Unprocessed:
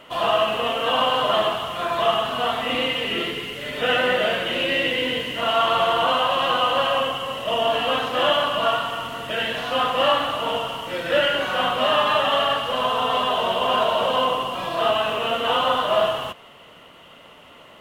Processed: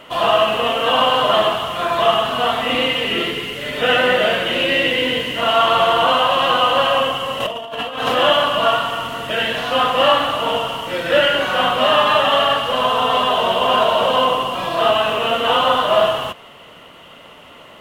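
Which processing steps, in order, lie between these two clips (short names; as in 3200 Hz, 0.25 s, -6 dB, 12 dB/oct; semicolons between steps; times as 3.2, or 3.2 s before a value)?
7.4–8.15 negative-ratio compressor -27 dBFS, ratio -0.5; gain +5 dB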